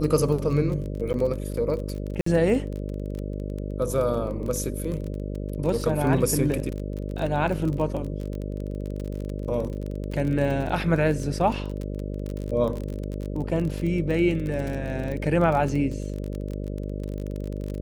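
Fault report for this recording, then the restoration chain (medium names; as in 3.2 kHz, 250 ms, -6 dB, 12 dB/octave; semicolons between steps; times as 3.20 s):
buzz 50 Hz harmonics 12 -31 dBFS
crackle 28 per s -29 dBFS
1.13–1.14 s: dropout 9.8 ms
2.21–2.26 s: dropout 54 ms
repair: de-click; de-hum 50 Hz, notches 12; interpolate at 1.13 s, 9.8 ms; interpolate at 2.21 s, 54 ms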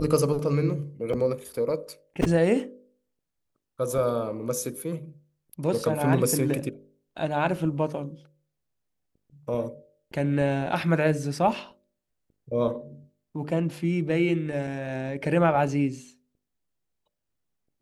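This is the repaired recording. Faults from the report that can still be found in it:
nothing left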